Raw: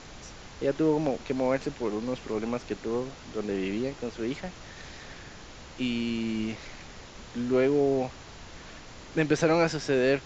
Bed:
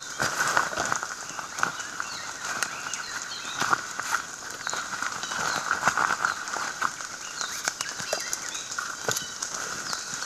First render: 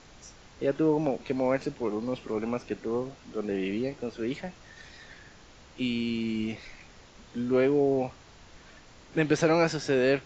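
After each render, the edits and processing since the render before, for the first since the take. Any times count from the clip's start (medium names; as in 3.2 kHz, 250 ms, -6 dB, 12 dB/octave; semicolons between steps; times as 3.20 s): noise print and reduce 7 dB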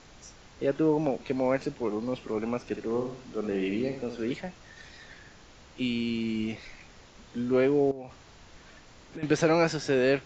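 2.60–4.34 s: flutter echo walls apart 11.4 m, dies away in 0.5 s; 7.91–9.23 s: compression 10:1, threshold -36 dBFS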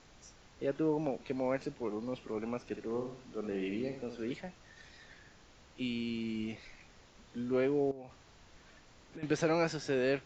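trim -7 dB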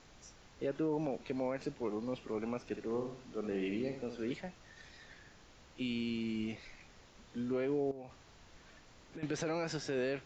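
peak limiter -26.5 dBFS, peak gain reduction 9 dB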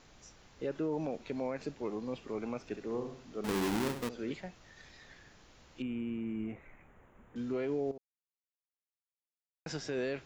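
3.44–4.09 s: square wave that keeps the level; 5.82–7.36 s: Butterworth band-stop 4.8 kHz, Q 0.55; 7.98–9.66 s: mute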